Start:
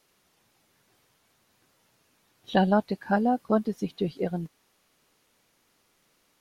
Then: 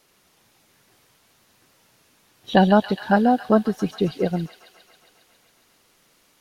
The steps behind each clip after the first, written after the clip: feedback echo behind a high-pass 136 ms, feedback 75%, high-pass 2 kHz, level -7 dB; trim +6.5 dB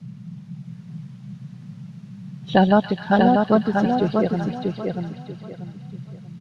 distance through air 81 m; feedback delay 638 ms, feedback 27%, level -4 dB; band noise 120–200 Hz -37 dBFS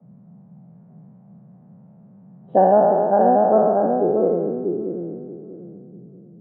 spectral sustain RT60 2.18 s; three-band isolator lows -17 dB, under 220 Hz, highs -14 dB, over 2.4 kHz; low-pass sweep 670 Hz -> 320 Hz, 3.72–4.91 s; trim -4.5 dB

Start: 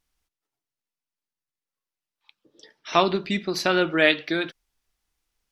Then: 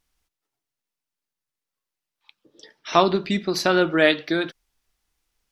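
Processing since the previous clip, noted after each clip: dynamic bell 2.5 kHz, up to -6 dB, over -37 dBFS, Q 1.5; trim +3 dB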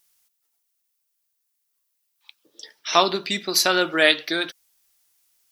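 RIAA curve recording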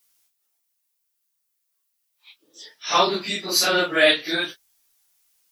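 phase randomisation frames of 100 ms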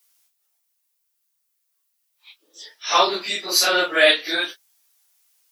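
high-pass 400 Hz 12 dB/octave; trim +2 dB

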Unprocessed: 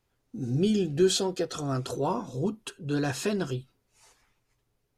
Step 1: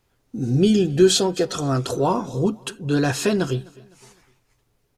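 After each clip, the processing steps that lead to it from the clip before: feedback delay 255 ms, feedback 43%, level -24 dB; trim +8 dB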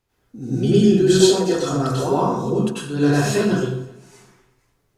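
plate-style reverb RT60 0.78 s, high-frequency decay 0.6×, pre-delay 80 ms, DRR -9 dB; trim -7.5 dB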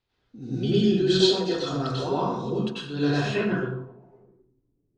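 low-pass sweep 4 kHz -> 310 Hz, 3.19–4.51 s; trim -7 dB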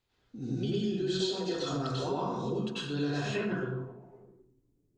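compression 4:1, threshold -30 dBFS, peak gain reduction 13.5 dB; peaking EQ 7.1 kHz +6 dB 0.4 oct

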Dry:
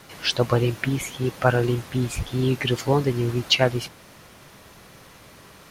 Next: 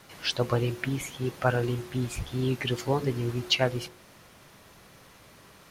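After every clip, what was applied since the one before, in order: de-hum 72.56 Hz, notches 7; trim -5.5 dB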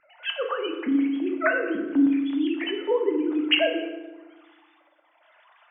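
formants replaced by sine waves; harmonic tremolo 1 Hz, depth 70%, crossover 660 Hz; FDN reverb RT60 1.2 s, low-frequency decay 1.4×, high-frequency decay 0.65×, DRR 2.5 dB; trim +3 dB

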